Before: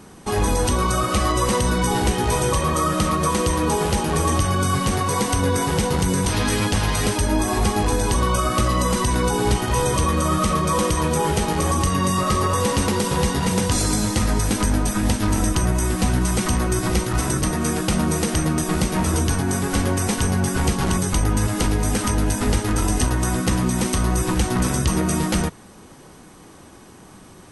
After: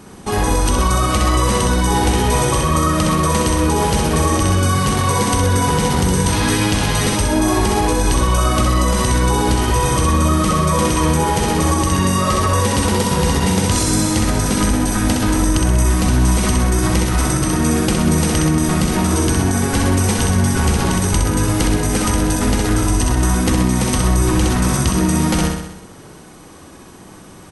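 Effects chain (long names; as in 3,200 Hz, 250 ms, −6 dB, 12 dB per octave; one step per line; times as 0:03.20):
repeating echo 64 ms, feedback 58%, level −4 dB
boost into a limiter +8 dB
level −5 dB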